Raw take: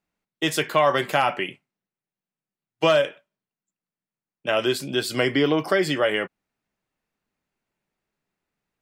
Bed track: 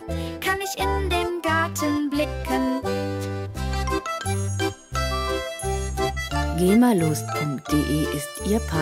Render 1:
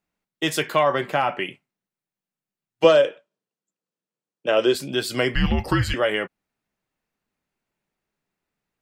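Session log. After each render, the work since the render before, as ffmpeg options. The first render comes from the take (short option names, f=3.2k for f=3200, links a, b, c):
-filter_complex "[0:a]asettb=1/sr,asplit=3[a][b][c];[a]atrim=end=0.834[d];[b]atrim=start=0.83:end=1.39,asetpts=PTS-STARTPTS,afade=t=in:d=0.004:c=qsin,afade=t=out:st=0.556:d=0.004:c=qsin,highshelf=f=3.6k:g=-12[e];[c]atrim=start=1.386[f];[d][e]acrossfade=d=0.004:c1=hsin:c2=qsin[g];[g][f]acrossfade=d=0.004:c1=qsin:c2=hsin,asettb=1/sr,asplit=3[h][i][j];[h]atrim=end=2.844[k];[i]atrim=start=2.84:end=4.75,asetpts=PTS-STARTPTS,afade=t=in:d=0.004:c=qsin,afade=t=out:st=1.906:d=0.004:c=qsin,highpass=140,equalizer=f=340:t=q:w=4:g=4,equalizer=f=490:t=q:w=4:g=10,equalizer=f=2.1k:t=q:w=4:g=-4,lowpass=f=9k:w=0.5412,lowpass=f=9k:w=1.3066[l];[j]atrim=start=4.746[m];[k][l]acrossfade=d=0.004:c1=hsin:c2=qsin[n];[n][m]acrossfade=d=0.004:c1=qsin:c2=hsin,asettb=1/sr,asplit=3[o][p][q];[o]atrim=end=5.354[r];[p]atrim=start=5.35:end=5.94,asetpts=PTS-STARTPTS,afade=t=in:d=0.004:c=qsin,afade=t=out:st=0.586:d=0.004:c=qsin,afreqshift=-250[s];[q]atrim=start=5.936[t];[r][s]acrossfade=d=0.004:c1=hsin:c2=qsin[u];[u][t]acrossfade=d=0.004:c1=qsin:c2=hsin"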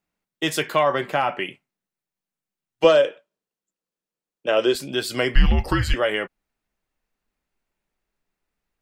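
-af "asubboost=boost=4.5:cutoff=56"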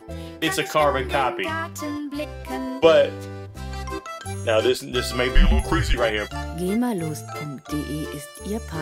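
-filter_complex "[1:a]volume=-6dB[a];[0:a][a]amix=inputs=2:normalize=0"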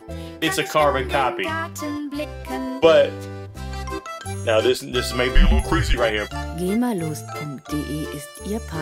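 -af "volume=1.5dB,alimiter=limit=-3dB:level=0:latency=1"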